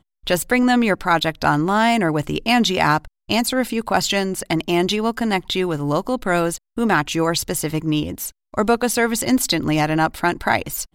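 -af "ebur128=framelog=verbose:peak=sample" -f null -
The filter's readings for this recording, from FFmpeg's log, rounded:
Integrated loudness:
  I:         -19.6 LUFS
  Threshold: -29.6 LUFS
Loudness range:
  LRA:         2.8 LU
  Threshold: -39.9 LUFS
  LRA low:   -21.0 LUFS
  LRA high:  -18.2 LUFS
Sample peak:
  Peak:       -4.4 dBFS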